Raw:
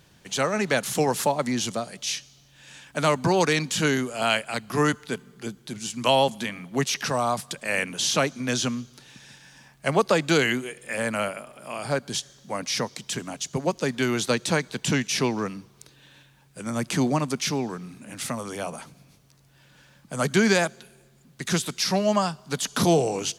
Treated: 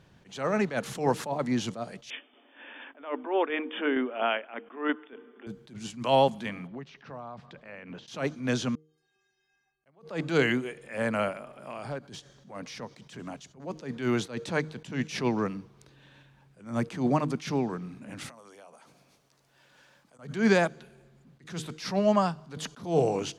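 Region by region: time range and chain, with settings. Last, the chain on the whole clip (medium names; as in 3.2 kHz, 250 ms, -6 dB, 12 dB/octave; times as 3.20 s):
2.10–5.47 s: brick-wall FIR band-pass 230–3600 Hz + tremolo saw down 4.3 Hz, depth 40% + three bands compressed up and down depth 40%
6.67–8.08 s: compression 10:1, threshold -35 dBFS + distance through air 200 m
8.75–9.86 s: compression 10:1, threshold -46 dBFS + inharmonic resonator 380 Hz, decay 0.55 s, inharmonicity 0.008
11.32–13.60 s: compression 2.5:1, threshold -34 dBFS + hard clipper -27.5 dBFS
18.29–20.19 s: tone controls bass -15 dB, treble +7 dB + compression 12:1, threshold -45 dBFS
whole clip: low-pass 1.7 kHz 6 dB/octave; de-hum 155.1 Hz, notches 3; attacks held to a fixed rise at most 150 dB/s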